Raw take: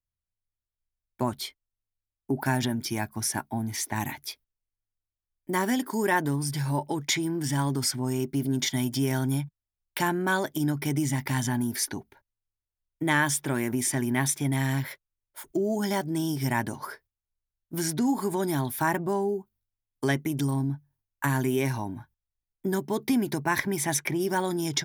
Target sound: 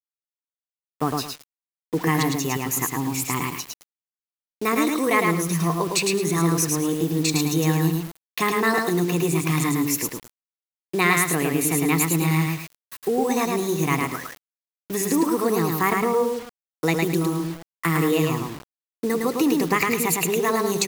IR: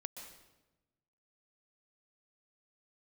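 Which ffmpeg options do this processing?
-filter_complex "[0:a]asetrate=52479,aresample=44100,asplit=2[s0][s1];[s1]aecho=0:1:108|216|324|432:0.708|0.184|0.0479|0.0124[s2];[s0][s2]amix=inputs=2:normalize=0,aeval=exprs='sgn(val(0))*max(abs(val(0))-0.00224,0)':c=same,asplit=2[s3][s4];[s4]aecho=0:1:76:0.0794[s5];[s3][s5]amix=inputs=2:normalize=0,acrusher=bits=6:mix=0:aa=0.000001,volume=1.58"

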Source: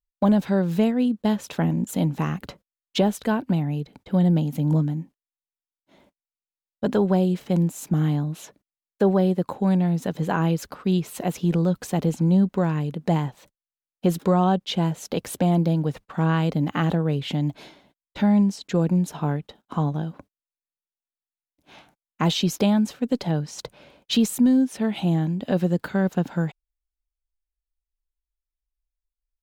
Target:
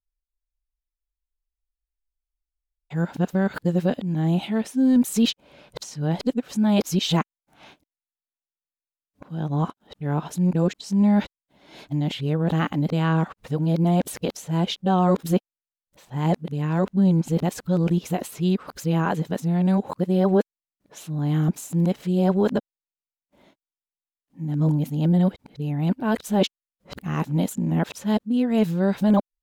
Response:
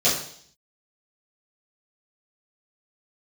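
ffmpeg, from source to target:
-af "areverse"

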